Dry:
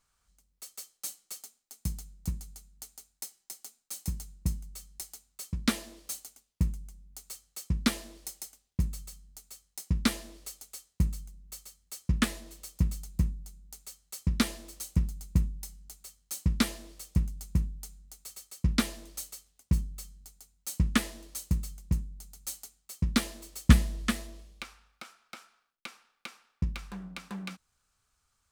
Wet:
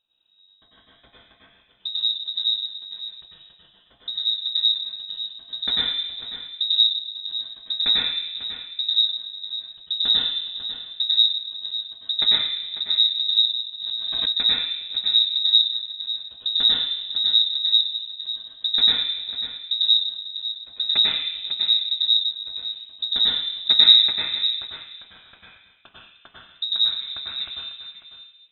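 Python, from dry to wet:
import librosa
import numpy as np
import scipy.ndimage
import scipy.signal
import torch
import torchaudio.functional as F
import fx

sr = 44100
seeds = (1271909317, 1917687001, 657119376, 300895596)

p1 = fx.rider(x, sr, range_db=4, speed_s=2.0)
p2 = x + (p1 * librosa.db_to_amplitude(-0.5))
p3 = fx.filter_lfo_notch(p2, sr, shape='saw_down', hz=0.62, low_hz=770.0, high_hz=1700.0, q=0.73)
p4 = p3 + fx.echo_single(p3, sr, ms=546, db=-12.0, dry=0)
p5 = fx.rev_plate(p4, sr, seeds[0], rt60_s=1.2, hf_ratio=0.35, predelay_ms=85, drr_db=-8.0)
p6 = fx.freq_invert(p5, sr, carrier_hz=3800)
p7 = fx.pre_swell(p6, sr, db_per_s=28.0, at=(13.79, 14.31), fade=0.02)
y = p7 * librosa.db_to_amplitude(-8.0)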